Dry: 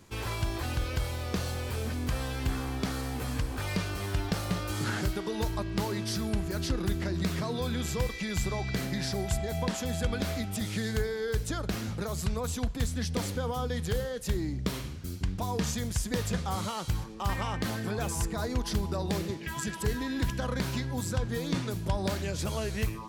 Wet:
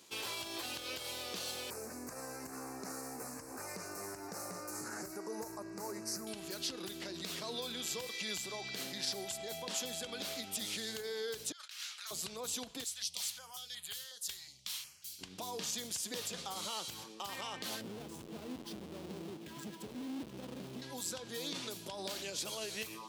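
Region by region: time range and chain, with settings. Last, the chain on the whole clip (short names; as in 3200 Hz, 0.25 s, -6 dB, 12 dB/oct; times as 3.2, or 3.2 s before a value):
1.7–6.27 Butterworth band-stop 3300 Hz, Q 0.79 + Doppler distortion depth 0.12 ms
11.52–12.11 HPF 1400 Hz 24 dB/oct + high shelf 11000 Hz -11 dB + negative-ratio compressor -46 dBFS, ratio -0.5
12.84–15.19 passive tone stack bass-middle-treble 10-0-10 + notch 480 Hz, Q 6.4 + stepped notch 5.5 Hz 290–5600 Hz
17.81–20.82 half-waves squared off + EQ curve 260 Hz 0 dB, 710 Hz -11 dB, 7000 Hz -19 dB
whole clip: limiter -26.5 dBFS; HPF 320 Hz 12 dB/oct; resonant high shelf 2400 Hz +6.5 dB, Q 1.5; gain -4.5 dB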